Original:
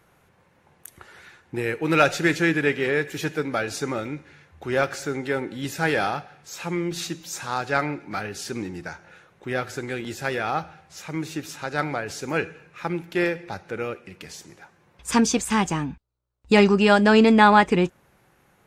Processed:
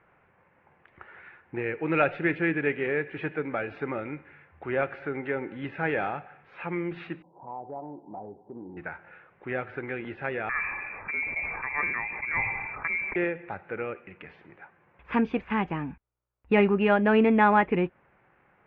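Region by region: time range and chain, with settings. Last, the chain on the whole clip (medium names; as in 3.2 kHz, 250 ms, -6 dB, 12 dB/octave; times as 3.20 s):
7.22–8.77 s: rippled Chebyshev low-pass 1 kHz, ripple 3 dB + bass shelf 160 Hz -7.5 dB + compression 3:1, threshold -33 dBFS
10.49–13.16 s: peaking EQ 100 Hz +9.5 dB 1.1 oct + frequency inversion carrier 2.5 kHz + decay stretcher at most 42 dB/s
whole clip: dynamic bell 1.3 kHz, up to -6 dB, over -33 dBFS, Q 0.75; steep low-pass 2.5 kHz 36 dB/octave; bass shelf 400 Hz -7 dB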